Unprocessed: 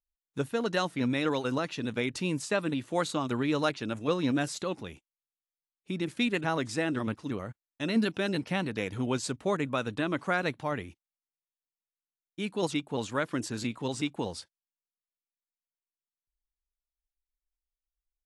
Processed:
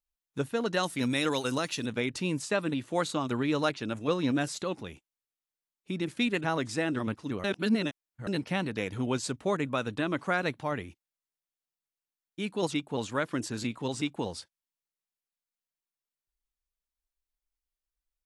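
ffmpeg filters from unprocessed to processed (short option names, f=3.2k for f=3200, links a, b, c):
-filter_complex "[0:a]asettb=1/sr,asplit=3[a][b][c];[a]atrim=end=0.834[d];[b]atrim=start=0.83:end=1.86,asetpts=PTS-STARTPTS,afade=t=in:d=0.004:c=qsin,afade=t=out:st=1.026:d=0.004:c=qsin,aemphasis=mode=production:type=75fm[e];[c]atrim=start=1.856[f];[d][e]acrossfade=d=0.004:c1=hsin:c2=qsin[g];[g][f]acrossfade=d=0.004:c1=qsin:c2=hsin,asplit=3[h][i][j];[h]atrim=end=7.442[k];[i]atrim=start=7.438:end=8.272,asetpts=PTS-STARTPTS,areverse[l];[j]atrim=start=8.268[m];[k][l]acrossfade=d=0.004:c1=hsin:c2=hsin[n];[n][m]acrossfade=d=0.004:c1=hsin:c2=hsin"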